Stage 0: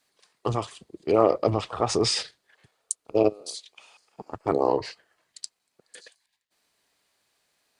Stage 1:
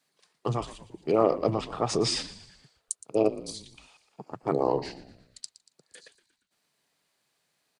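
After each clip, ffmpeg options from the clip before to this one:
-filter_complex "[0:a]lowshelf=f=100:t=q:w=3:g=-11.5,asplit=6[s0][s1][s2][s3][s4][s5];[s1]adelay=117,afreqshift=-76,volume=0.158[s6];[s2]adelay=234,afreqshift=-152,volume=0.0813[s7];[s3]adelay=351,afreqshift=-228,volume=0.0412[s8];[s4]adelay=468,afreqshift=-304,volume=0.0211[s9];[s5]adelay=585,afreqshift=-380,volume=0.0107[s10];[s0][s6][s7][s8][s9][s10]amix=inputs=6:normalize=0,volume=0.668"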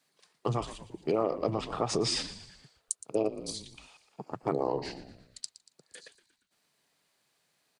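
-af "acompressor=threshold=0.0447:ratio=3,volume=1.12"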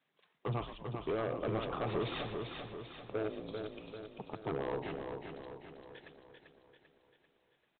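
-af "aresample=8000,asoftclip=type=hard:threshold=0.0447,aresample=44100,aecho=1:1:392|784|1176|1568|1960|2352|2744:0.531|0.276|0.144|0.0746|0.0388|0.0202|0.0105,volume=0.668"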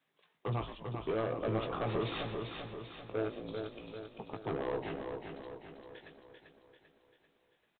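-filter_complex "[0:a]asplit=2[s0][s1];[s1]adelay=18,volume=0.447[s2];[s0][s2]amix=inputs=2:normalize=0"

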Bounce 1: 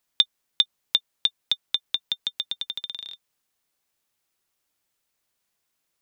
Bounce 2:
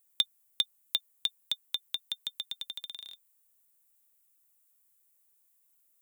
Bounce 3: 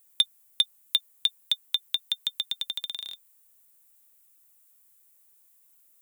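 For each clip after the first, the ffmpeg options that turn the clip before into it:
-af "aexciter=amount=6.4:drive=4.2:freq=7300,volume=0.398"
-af "asoftclip=type=tanh:threshold=0.119,volume=2.51"

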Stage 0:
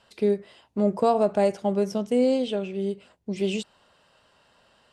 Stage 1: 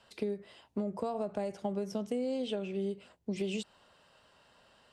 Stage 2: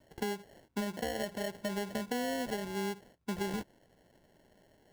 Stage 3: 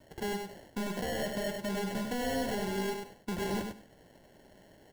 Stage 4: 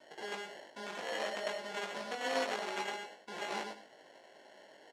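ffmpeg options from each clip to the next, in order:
-filter_complex "[0:a]acrossover=split=150[s0][s1];[s1]alimiter=limit=0.119:level=0:latency=1:release=308[s2];[s0][s2]amix=inputs=2:normalize=0,acompressor=threshold=0.0398:ratio=6,volume=0.75"
-af "acrusher=samples=36:mix=1:aa=0.000001,volume=0.891"
-filter_complex "[0:a]asoftclip=type=hard:threshold=0.0141,asplit=2[s0][s1];[s1]aecho=0:1:99|198|297:0.562|0.101|0.0182[s2];[s0][s2]amix=inputs=2:normalize=0,volume=1.88"
-filter_complex "[0:a]aeval=exprs='0.0447*(cos(1*acos(clip(val(0)/0.0447,-1,1)))-cos(1*PI/2))+0.0158*(cos(3*acos(clip(val(0)/0.0447,-1,1)))-cos(3*PI/2))+0.0126*(cos(5*acos(clip(val(0)/0.0447,-1,1)))-cos(5*PI/2))':c=same,highpass=540,lowpass=5900,asplit=2[s0][s1];[s1]adelay=19,volume=0.631[s2];[s0][s2]amix=inputs=2:normalize=0,volume=1.12"

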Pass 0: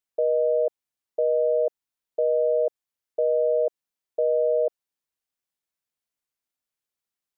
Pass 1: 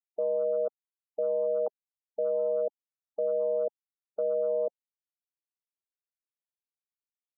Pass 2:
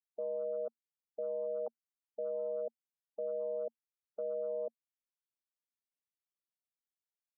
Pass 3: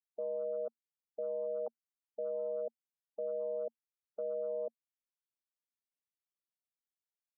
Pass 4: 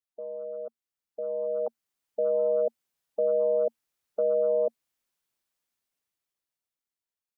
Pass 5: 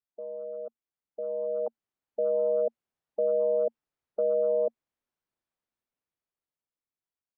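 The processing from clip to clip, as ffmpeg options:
-af "afwtdn=0.0355,afftfilt=real='re*gte(hypot(re,im),0.0112)':imag='im*gte(hypot(re,im),0.0112)':win_size=1024:overlap=0.75,volume=0.501"
-af "equalizer=f=230:t=o:w=0.22:g=7,volume=0.355"
-af anull
-af "dynaudnorm=f=250:g=13:m=4.22"
-af "lowpass=f=1100:p=1"

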